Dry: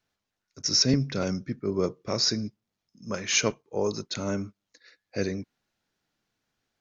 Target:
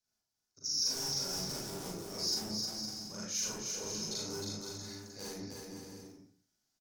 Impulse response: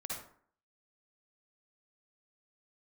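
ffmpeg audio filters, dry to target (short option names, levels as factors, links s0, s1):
-filter_complex "[0:a]acrossover=split=310[s0][s1];[s0]aeval=exprs='(mod(18.8*val(0)+1,2)-1)/18.8':c=same[s2];[s2][s1]amix=inputs=2:normalize=0,agate=range=0.282:threshold=0.00126:ratio=16:detection=peak,areverse,acompressor=threshold=0.0112:ratio=10,areverse[s3];[1:a]atrim=start_sample=2205,asetrate=57330,aresample=44100[s4];[s3][s4]afir=irnorm=-1:irlink=0,asoftclip=type=tanh:threshold=0.0119,asplit=2[s5][s6];[s6]adelay=38,volume=0.708[s7];[s5][s7]amix=inputs=2:normalize=0,aeval=exprs='0.0188*(cos(1*acos(clip(val(0)/0.0188,-1,1)))-cos(1*PI/2))+0.000668*(cos(3*acos(clip(val(0)/0.0188,-1,1)))-cos(3*PI/2))+0.000299*(cos(4*acos(clip(val(0)/0.0188,-1,1)))-cos(4*PI/2))+0.00119*(cos(5*acos(clip(val(0)/0.0188,-1,1)))-cos(5*PI/2))+0.000106*(cos(6*acos(clip(val(0)/0.0188,-1,1)))-cos(6*PI/2))':c=same,highshelf=f=3800:t=q:w=1.5:g=12,aecho=1:1:310|511.5|642.5|727.6|782.9:0.631|0.398|0.251|0.158|0.1" -ar 48000 -c:a libmp3lame -b:a 80k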